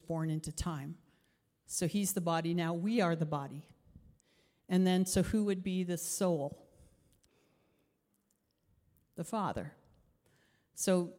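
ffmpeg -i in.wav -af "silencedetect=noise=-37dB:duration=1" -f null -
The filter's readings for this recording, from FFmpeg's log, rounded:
silence_start: 3.55
silence_end: 4.71 | silence_duration: 1.16
silence_start: 6.52
silence_end: 9.18 | silence_duration: 2.66
silence_start: 9.66
silence_end: 10.78 | silence_duration: 1.12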